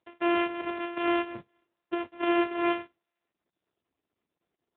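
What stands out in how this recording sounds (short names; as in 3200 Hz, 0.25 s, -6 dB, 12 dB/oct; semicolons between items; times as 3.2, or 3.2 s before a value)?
a buzz of ramps at a fixed pitch in blocks of 128 samples; AMR-NB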